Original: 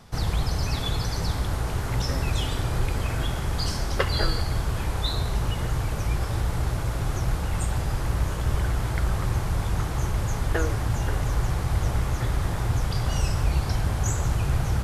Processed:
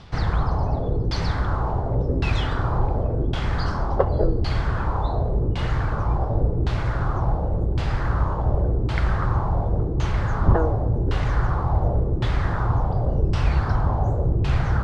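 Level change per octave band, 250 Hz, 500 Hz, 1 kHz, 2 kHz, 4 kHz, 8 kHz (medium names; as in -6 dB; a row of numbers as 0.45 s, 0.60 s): +4.5 dB, +6.5 dB, +5.5 dB, +1.0 dB, -5.0 dB, under -10 dB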